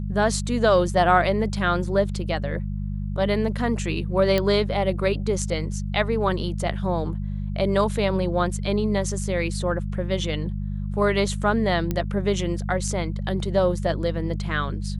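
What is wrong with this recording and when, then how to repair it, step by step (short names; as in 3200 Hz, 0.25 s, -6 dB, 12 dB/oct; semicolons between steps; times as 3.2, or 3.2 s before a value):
hum 50 Hz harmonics 4 -28 dBFS
4.38 pop -10 dBFS
11.91 pop -12 dBFS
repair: de-click; de-hum 50 Hz, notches 4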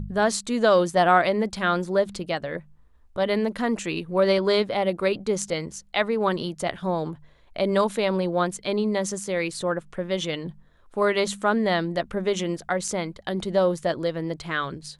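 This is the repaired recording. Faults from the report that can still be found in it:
4.38 pop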